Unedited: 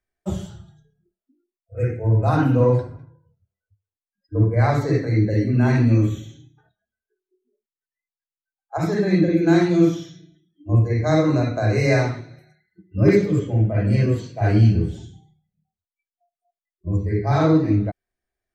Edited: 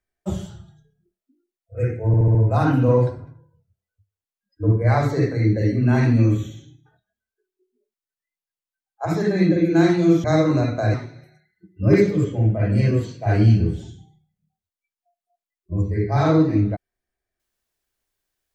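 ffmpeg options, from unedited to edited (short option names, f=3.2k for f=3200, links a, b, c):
-filter_complex "[0:a]asplit=7[a][b][c][d][e][f][g];[a]atrim=end=2.142[h];[b]atrim=start=2.068:end=2.142[i];[c]atrim=start=2.068:end=2.142[j];[d]atrim=start=2.068:end=2.142[k];[e]atrim=start=2.068:end=9.962[l];[f]atrim=start=11.028:end=11.732[m];[g]atrim=start=12.088[n];[h][i]acrossfade=d=0.004:c1=hsin:c2=hsin[o];[o][j]acrossfade=d=0.004:c1=hsin:c2=hsin[p];[p][k]acrossfade=d=0.004:c1=hsin:c2=hsin[q];[q][l]acrossfade=d=0.004:c1=hsin:c2=hsin[r];[r][m]acrossfade=d=0.004:c1=hsin:c2=hsin[s];[s][n]acrossfade=d=0.004:c1=hsin:c2=hsin"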